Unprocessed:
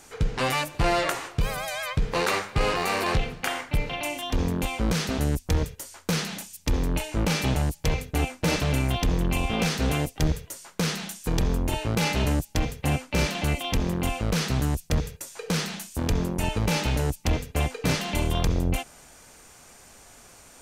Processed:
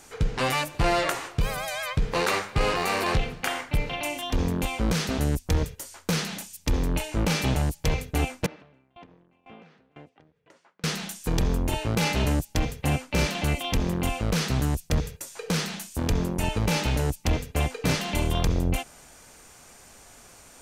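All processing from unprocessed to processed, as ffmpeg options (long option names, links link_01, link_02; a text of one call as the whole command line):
ffmpeg -i in.wav -filter_complex "[0:a]asettb=1/sr,asplit=3[link_01][link_02][link_03];[link_01]atrim=end=8.464[link_04];[link_02]atrim=start=8.46:end=10.84,asetpts=PTS-STARTPTS,afade=type=in:duration=0.004:curve=qsin,afade=type=out:start_time=2.376:duration=0.004:curve=qsin,acompressor=threshold=-37dB:ratio=8:attack=3.2:release=140:knee=1:detection=peak,highpass=180,lowpass=2200,aeval=exprs='val(0)*pow(10,-25*if(lt(mod(2*n/s,1),2*abs(2)/1000),1-mod(2*n/s,1)/(2*abs(2)/1000),(mod(2*n/s,1)-2*abs(2)/1000)/(1-2*abs(2)/1000))/20)':channel_layout=same[link_05];[link_03]atrim=start=10.836[link_06];[link_04][link_05]acrossfade=duration=0.004:curve1=hsin:curve2=qsin[link_07];[link_07][link_06]acrossfade=duration=0.004:curve1=qsin:curve2=hsin" out.wav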